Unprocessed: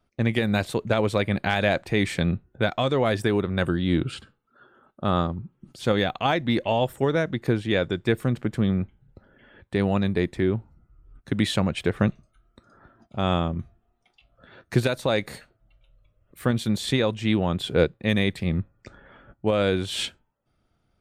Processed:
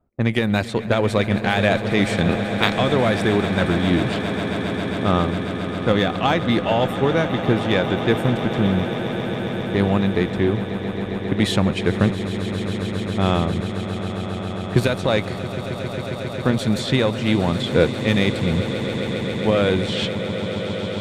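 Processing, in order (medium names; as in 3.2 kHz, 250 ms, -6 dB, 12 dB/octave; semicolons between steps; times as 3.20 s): 2.28–2.77 s: spectral peaks clipped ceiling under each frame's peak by 24 dB; level-controlled noise filter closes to 900 Hz, open at -19.5 dBFS; Chebyshev shaper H 8 -31 dB, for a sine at -5 dBFS; on a send: echo with a slow build-up 135 ms, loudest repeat 8, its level -14.5 dB; on the sum: trim +3.5 dB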